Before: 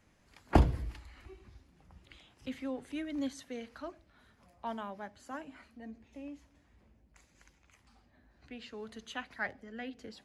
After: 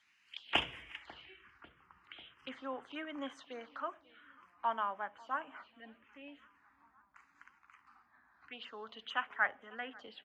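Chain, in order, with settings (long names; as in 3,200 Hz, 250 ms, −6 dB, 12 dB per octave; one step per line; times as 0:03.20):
parametric band 3,100 Hz +15 dB 0.5 octaves
repeating echo 544 ms, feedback 59%, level −22.5 dB
band-pass filter sweep 3,000 Hz → 1,200 Hz, 0:00.48–0:01.73
phaser swept by the level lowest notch 440 Hz, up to 4,300 Hz, full sweep at −50 dBFS
level +11 dB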